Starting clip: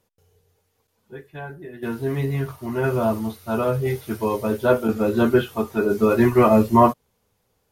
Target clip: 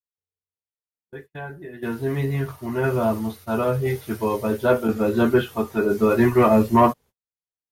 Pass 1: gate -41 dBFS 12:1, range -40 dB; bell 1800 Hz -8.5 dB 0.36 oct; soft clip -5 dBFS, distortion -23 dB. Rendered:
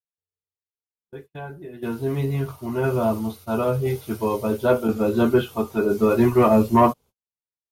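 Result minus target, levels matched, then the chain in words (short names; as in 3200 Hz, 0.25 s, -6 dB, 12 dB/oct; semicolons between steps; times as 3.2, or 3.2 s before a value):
2000 Hz band -3.5 dB
gate -41 dBFS 12:1, range -40 dB; bell 1800 Hz +2.5 dB 0.36 oct; soft clip -5 dBFS, distortion -23 dB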